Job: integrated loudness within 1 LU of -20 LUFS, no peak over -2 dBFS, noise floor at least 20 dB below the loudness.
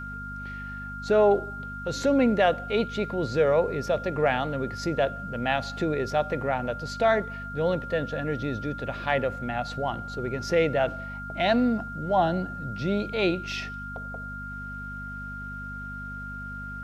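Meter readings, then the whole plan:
hum 50 Hz; harmonics up to 250 Hz; hum level -37 dBFS; steady tone 1400 Hz; tone level -36 dBFS; loudness -27.5 LUFS; peak -10.0 dBFS; loudness target -20.0 LUFS
-> de-hum 50 Hz, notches 5; notch 1400 Hz, Q 30; gain +7.5 dB

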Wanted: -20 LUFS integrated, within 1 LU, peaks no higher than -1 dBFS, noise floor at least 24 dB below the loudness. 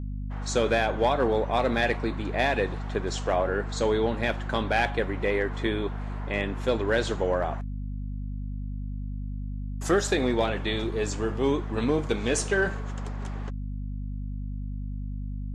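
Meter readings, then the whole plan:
hum 50 Hz; harmonics up to 250 Hz; hum level -30 dBFS; loudness -28.0 LUFS; peak -12.0 dBFS; loudness target -20.0 LUFS
-> notches 50/100/150/200/250 Hz; gain +8 dB

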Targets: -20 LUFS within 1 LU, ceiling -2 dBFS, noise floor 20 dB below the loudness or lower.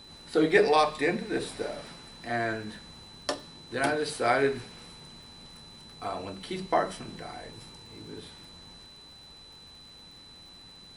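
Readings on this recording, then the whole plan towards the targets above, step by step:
ticks 55/s; steady tone 4000 Hz; tone level -49 dBFS; loudness -29.0 LUFS; peak -8.0 dBFS; loudness target -20.0 LUFS
-> de-click; notch 4000 Hz, Q 30; gain +9 dB; limiter -2 dBFS

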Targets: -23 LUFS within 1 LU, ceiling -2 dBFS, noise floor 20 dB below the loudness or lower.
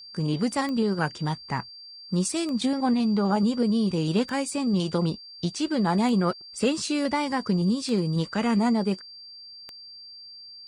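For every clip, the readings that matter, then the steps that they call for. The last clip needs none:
clicks 6; steady tone 4700 Hz; tone level -42 dBFS; loudness -25.5 LUFS; peak -11.5 dBFS; loudness target -23.0 LUFS
-> de-click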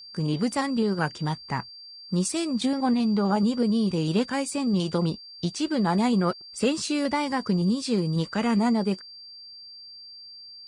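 clicks 0; steady tone 4700 Hz; tone level -42 dBFS
-> notch 4700 Hz, Q 30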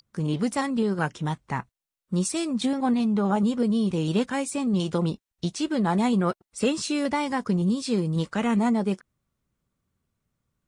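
steady tone none; loudness -26.0 LUFS; peak -11.5 dBFS; loudness target -23.0 LUFS
-> gain +3 dB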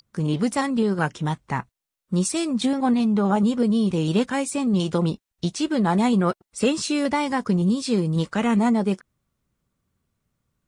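loudness -23.0 LUFS; peak -8.5 dBFS; noise floor -86 dBFS

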